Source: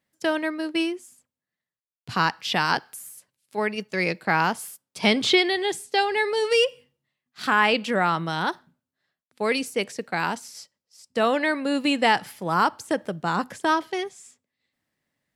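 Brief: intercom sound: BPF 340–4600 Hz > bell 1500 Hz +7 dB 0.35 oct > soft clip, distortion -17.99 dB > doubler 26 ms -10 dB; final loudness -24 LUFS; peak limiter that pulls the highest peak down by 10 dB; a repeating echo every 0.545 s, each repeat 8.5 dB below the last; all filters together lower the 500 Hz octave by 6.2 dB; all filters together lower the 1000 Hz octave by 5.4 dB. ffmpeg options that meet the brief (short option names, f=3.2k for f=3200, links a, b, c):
-filter_complex "[0:a]equalizer=f=500:t=o:g=-4.5,equalizer=f=1k:t=o:g=-7.5,alimiter=limit=-18dB:level=0:latency=1,highpass=340,lowpass=4.6k,equalizer=f=1.5k:t=o:w=0.35:g=7,aecho=1:1:545|1090|1635|2180:0.376|0.143|0.0543|0.0206,asoftclip=threshold=-19.5dB,asplit=2[a][b];[b]adelay=26,volume=-10dB[c];[a][c]amix=inputs=2:normalize=0,volume=6.5dB"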